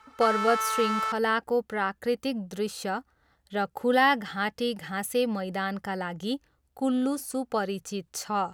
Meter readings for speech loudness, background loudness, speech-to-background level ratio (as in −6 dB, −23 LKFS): −28.5 LKFS, −29.0 LKFS, 0.5 dB